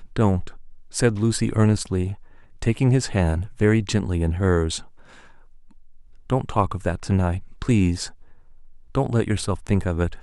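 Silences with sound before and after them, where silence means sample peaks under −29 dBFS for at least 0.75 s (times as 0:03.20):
0:04.82–0:06.30
0:08.09–0:08.95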